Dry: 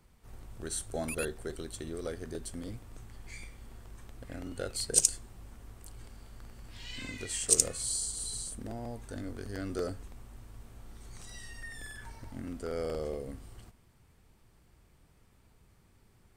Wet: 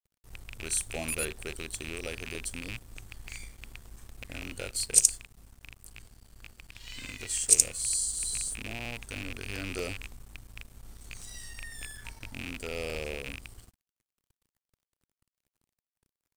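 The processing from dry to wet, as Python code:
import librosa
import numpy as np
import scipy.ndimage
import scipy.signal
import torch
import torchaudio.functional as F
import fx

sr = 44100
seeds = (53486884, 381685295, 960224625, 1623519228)

p1 = fx.rattle_buzz(x, sr, strikes_db=-43.0, level_db=-27.0)
p2 = fx.high_shelf(p1, sr, hz=3600.0, db=11.0)
p3 = fx.rider(p2, sr, range_db=4, speed_s=0.5)
p4 = p2 + (p3 * 10.0 ** (-2.0 / 20.0))
p5 = fx.low_shelf(p4, sr, hz=91.0, db=6.5)
p6 = np.sign(p5) * np.maximum(np.abs(p5) - 10.0 ** (-44.0 / 20.0), 0.0)
y = p6 * 10.0 ** (-9.0 / 20.0)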